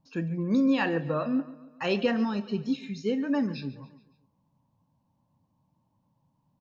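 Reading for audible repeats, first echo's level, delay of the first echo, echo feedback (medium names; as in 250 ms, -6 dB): 4, -18.0 dB, 141 ms, 53%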